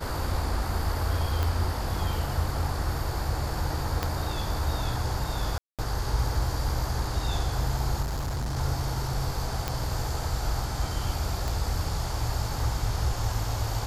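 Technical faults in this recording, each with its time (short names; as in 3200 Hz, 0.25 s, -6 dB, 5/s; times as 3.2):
1.43 pop
4.03 pop -12 dBFS
5.58–5.79 gap 0.207 s
8.02–8.58 clipped -27 dBFS
9.68 pop -13 dBFS
11.48 pop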